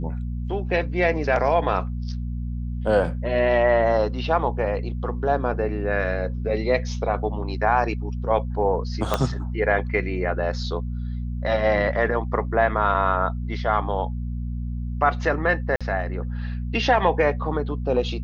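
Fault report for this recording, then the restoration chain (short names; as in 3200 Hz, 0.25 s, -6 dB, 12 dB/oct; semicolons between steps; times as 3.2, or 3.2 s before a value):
hum 60 Hz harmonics 4 -28 dBFS
9.14 pop -7 dBFS
15.76–15.81 gap 46 ms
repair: de-click; de-hum 60 Hz, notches 4; interpolate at 15.76, 46 ms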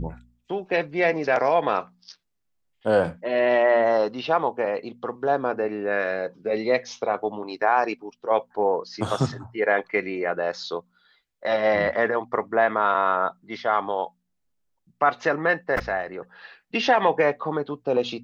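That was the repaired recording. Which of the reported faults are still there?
9.14 pop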